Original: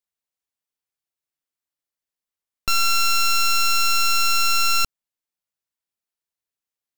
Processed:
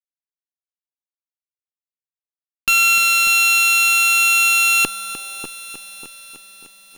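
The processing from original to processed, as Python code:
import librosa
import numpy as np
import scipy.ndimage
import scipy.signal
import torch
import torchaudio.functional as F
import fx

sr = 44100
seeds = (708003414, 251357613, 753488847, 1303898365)

p1 = scipy.signal.sosfilt(scipy.signal.butter(4, 240.0, 'highpass', fs=sr, output='sos'), x)
p2 = fx.quant_dither(p1, sr, seeds[0], bits=6, dither='none')
p3 = fx.high_shelf_res(p2, sr, hz=4500.0, db=-14.0, q=3.0)
p4 = fx.fuzz(p3, sr, gain_db=36.0, gate_db=-41.0)
p5 = p4 + fx.echo_bbd(p4, sr, ms=592, stages=4096, feedback_pct=32, wet_db=-8, dry=0)
y = fx.echo_crushed(p5, sr, ms=302, feedback_pct=80, bits=7, wet_db=-12.5)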